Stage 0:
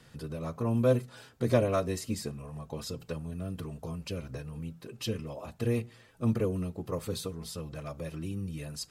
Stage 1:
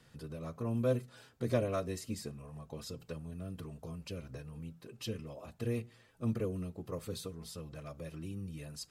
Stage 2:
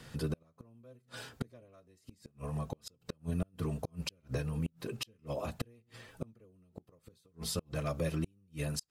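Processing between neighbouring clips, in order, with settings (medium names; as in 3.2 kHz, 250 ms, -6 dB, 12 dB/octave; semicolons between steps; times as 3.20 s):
dynamic bell 890 Hz, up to -4 dB, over -53 dBFS, Q 3.4; trim -6 dB
inverted gate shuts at -34 dBFS, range -36 dB; trim +11 dB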